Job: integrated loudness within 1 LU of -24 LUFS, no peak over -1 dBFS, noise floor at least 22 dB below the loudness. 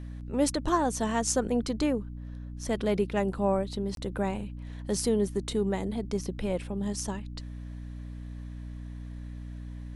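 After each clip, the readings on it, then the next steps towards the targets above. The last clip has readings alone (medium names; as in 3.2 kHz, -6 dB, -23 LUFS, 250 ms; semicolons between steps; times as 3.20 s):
dropouts 1; longest dropout 22 ms; hum 60 Hz; highest harmonic 300 Hz; hum level -37 dBFS; loudness -30.0 LUFS; peak level -12.5 dBFS; loudness target -24.0 LUFS
-> interpolate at 3.95 s, 22 ms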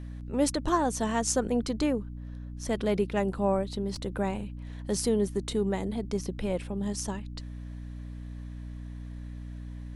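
dropouts 0; hum 60 Hz; highest harmonic 300 Hz; hum level -37 dBFS
-> de-hum 60 Hz, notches 5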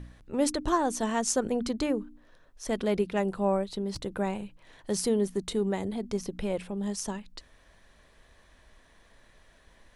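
hum not found; loudness -30.0 LUFS; peak level -13.0 dBFS; loudness target -24.0 LUFS
-> trim +6 dB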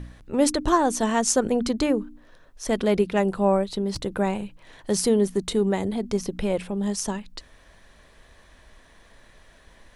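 loudness -24.0 LUFS; peak level -7.0 dBFS; noise floor -54 dBFS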